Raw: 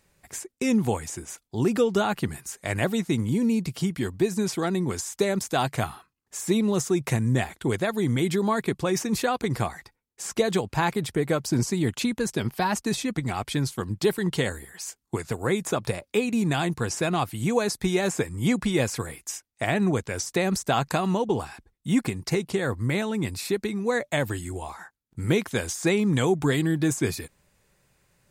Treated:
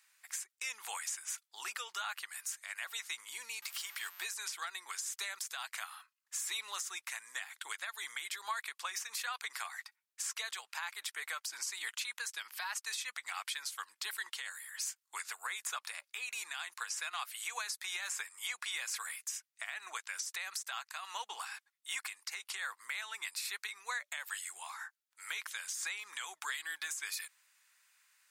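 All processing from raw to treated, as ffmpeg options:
ffmpeg -i in.wav -filter_complex "[0:a]asettb=1/sr,asplit=3[link_01][link_02][link_03];[link_01]atrim=end=3.624[link_04];[link_02]atrim=start=3.62:end=4.24,asetpts=PTS-STARTPTS,afade=type=in:duration=0.004:curve=qsin,afade=type=out:start_time=0.616:duration=0.004:curve=qsin,aeval=exprs='val(0)+0.5*0.0133*sgn(val(0))':channel_layout=same,highpass=230,aeval=exprs='val(0)+0.00224*sin(2*PI*13000*n/s)':channel_layout=same[link_05];[link_03]atrim=start=4.236[link_06];[link_04][link_05]acrossfade=duration=0.004:curve1=hsin:curve2=qsin[link_07];[link_07][link_06]acrossfade=duration=0.004:curve1=qsin:curve2=hsin,highpass=frequency=1200:width=0.5412,highpass=frequency=1200:width=1.3066,acompressor=threshold=-34dB:ratio=2.5,alimiter=level_in=3dB:limit=-24dB:level=0:latency=1:release=180,volume=-3dB" out.wav

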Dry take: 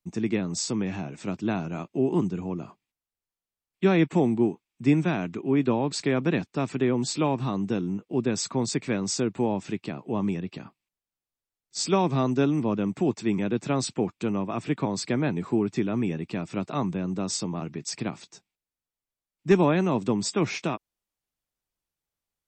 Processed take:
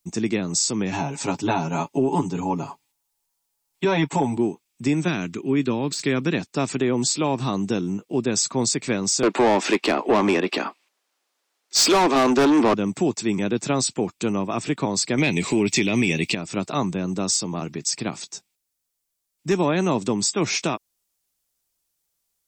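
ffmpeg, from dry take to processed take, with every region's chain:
ffmpeg -i in.wav -filter_complex "[0:a]asettb=1/sr,asplit=3[link_01][link_02][link_03];[link_01]atrim=end=0.924[link_04];[link_02]atrim=start=0.92:end=4.37,asetpts=PTS-STARTPTS,afade=type=in:duration=0.004:curve=qsin,afade=type=out:start_time=3.446:duration=0.004:curve=qsin,equalizer=frequency=890:width=5.5:gain=14.5,aecho=1:1:7.2:0.94,atrim=end_sample=152145[link_05];[link_03]atrim=start=4.366[link_06];[link_04][link_05]acrossfade=duration=0.004:curve1=hsin:curve2=qsin[link_07];[link_07][link_06]acrossfade=duration=0.004:curve1=qsin:curve2=hsin,asettb=1/sr,asplit=3[link_08][link_09][link_10];[link_08]atrim=end=5.084[link_11];[link_09]atrim=start=5.08:end=6.35,asetpts=PTS-STARTPTS,afade=type=in:duration=0.004:curve=qsin,afade=type=out:start_time=1.266:duration=0.004:curve=qsin,deesser=0.85,equalizer=frequency=700:width_type=o:width=1.1:gain=-8[link_12];[link_10]atrim=start=6.346[link_13];[link_11][link_12]acrossfade=duration=0.004:curve1=hsin:curve2=qsin[link_14];[link_14][link_13]acrossfade=duration=0.004:curve1=qsin:curve2=hsin,asettb=1/sr,asplit=3[link_15][link_16][link_17];[link_15]atrim=end=9.234[link_18];[link_16]atrim=start=9.23:end=12.74,asetpts=PTS-STARTPTS,afade=type=in:duration=0.004:curve=qsin,afade=type=out:start_time=3.506:duration=0.004:curve=qsin,highpass=frequency=240:width=0.5412,highpass=frequency=240:width=1.3066,highshelf=frequency=6900:gain=-9,asplit=2[link_19][link_20];[link_20]highpass=frequency=720:poles=1,volume=26dB,asoftclip=type=tanh:threshold=-11.5dB[link_21];[link_19][link_21]amix=inputs=2:normalize=0,lowpass=frequency=1700:poles=1,volume=-6dB[link_22];[link_17]atrim=start=12.736[link_23];[link_18][link_22]acrossfade=duration=0.004:curve1=hsin:curve2=qsin[link_24];[link_24][link_23]acrossfade=duration=0.004:curve1=qsin:curve2=hsin,asettb=1/sr,asplit=3[link_25][link_26][link_27];[link_25]atrim=end=15.184[link_28];[link_26]atrim=start=15.18:end=16.35,asetpts=PTS-STARTPTS,afade=type=in:duration=0.004:curve=qsin,afade=type=out:start_time=1.166:duration=0.004:curve=qsin,highshelf=frequency=1800:width_type=q:width=3:gain=7,acontrast=87[link_29];[link_27]atrim=start=16.346[link_30];[link_28][link_29]acrossfade=duration=0.004:curve1=hsin:curve2=qsin[link_31];[link_31][link_30]acrossfade=duration=0.004:curve1=qsin:curve2=hsin,bass=frequency=250:gain=-3,treble=frequency=4000:gain=11,acontrast=27,alimiter=limit=-12dB:level=0:latency=1:release=194" out.wav

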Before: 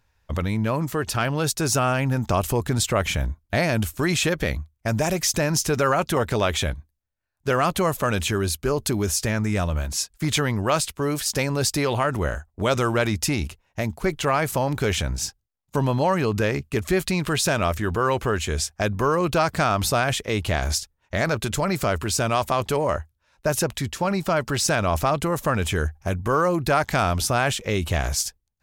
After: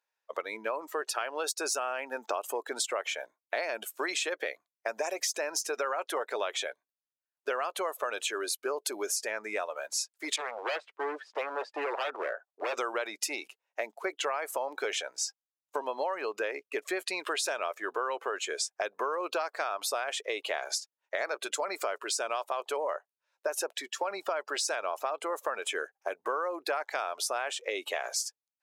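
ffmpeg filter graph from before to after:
ffmpeg -i in.wav -filter_complex "[0:a]asettb=1/sr,asplit=3[link_01][link_02][link_03];[link_01]atrim=end=10.364[link_04];[link_02]atrim=start=10.36:end=12.74,asetpts=PTS-STARTPTS,afade=type=in:duration=0.004:curve=qsin,afade=type=out:start_time=2.376:duration=0.004:curve=qsin,lowpass=1800,aeval=exprs='0.0891*(abs(mod(val(0)/0.0891+3,4)-2)-1)':channel_layout=same[link_05];[link_03]atrim=start=12.736[link_06];[link_04][link_05]acrossfade=duration=0.004:curve1=hsin:curve2=qsin[link_07];[link_07][link_06]acrossfade=duration=0.004:curve1=qsin:curve2=hsin,highpass=frequency=440:width=0.5412,highpass=frequency=440:width=1.3066,afftdn=noise_reduction=15:noise_floor=-35,acompressor=threshold=-29dB:ratio=6" out.wav

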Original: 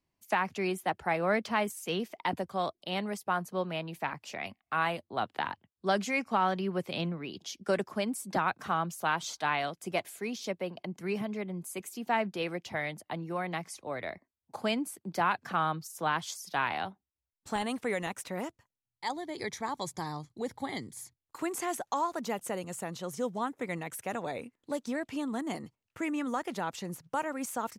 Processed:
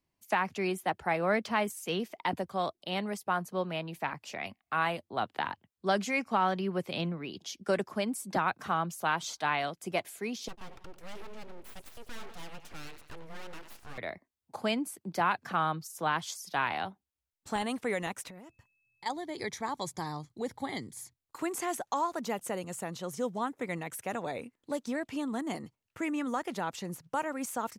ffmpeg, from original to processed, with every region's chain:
ffmpeg -i in.wav -filter_complex "[0:a]asettb=1/sr,asplit=3[link_01][link_02][link_03];[link_01]atrim=end=10.484[link_04];[link_02]atrim=start=10.48:end=13.98,asetpts=PTS-STARTPTS,afade=type=in:duration=0.004:curve=qsin,afade=type=out:start_time=3.496:duration=0.004:curve=qsin,aecho=1:1:94|188|282|376:0.158|0.0761|0.0365|0.0175,atrim=end_sample=154350,aeval=exprs='abs(val(0))':channel_layout=same,aeval=exprs='(tanh(25.1*val(0)+0.55)-tanh(0.55))/25.1':channel_layout=same[link_05];[link_03]atrim=start=13.976[link_06];[link_04][link_05]acrossfade=duration=0.004:curve1=hsin:curve2=qsin[link_07];[link_07][link_06]acrossfade=duration=0.004:curve1=qsin:curve2=hsin,asettb=1/sr,asplit=3[link_08][link_09][link_10];[link_08]atrim=end=18.284[link_11];[link_09]atrim=start=18.28:end=19.06,asetpts=PTS-STARTPTS,afade=type=in:duration=0.004:curve=qsin,afade=type=out:start_time=0.776:duration=0.004:curve=qsin,bass=frequency=250:gain=7,treble=frequency=4000:gain=0,acompressor=threshold=-45dB:ratio=16:attack=3.2:release=140:knee=1:detection=peak,aeval=exprs='val(0)+0.000224*sin(2*PI*2600*n/s)':channel_layout=same[link_12];[link_10]atrim=start=19.056[link_13];[link_11][link_12]acrossfade=duration=0.004:curve1=hsin:curve2=qsin[link_14];[link_14][link_13]acrossfade=duration=0.004:curve1=qsin:curve2=hsin" out.wav

